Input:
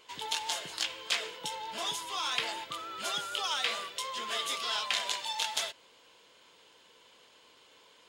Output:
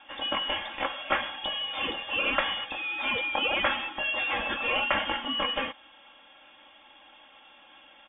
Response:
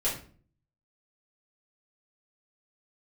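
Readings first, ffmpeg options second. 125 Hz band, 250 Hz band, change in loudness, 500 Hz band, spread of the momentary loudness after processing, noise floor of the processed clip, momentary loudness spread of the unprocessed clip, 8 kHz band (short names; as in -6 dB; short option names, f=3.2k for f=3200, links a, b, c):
n/a, +14.0 dB, +5.0 dB, +9.0 dB, 6 LU, -55 dBFS, 7 LU, under -40 dB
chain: -af "highpass=f=73:p=1,aecho=1:1:3.7:0.91,lowpass=f=3.2k:t=q:w=0.5098,lowpass=f=3.2k:t=q:w=0.6013,lowpass=f=3.2k:t=q:w=0.9,lowpass=f=3.2k:t=q:w=2.563,afreqshift=-3800,volume=5dB"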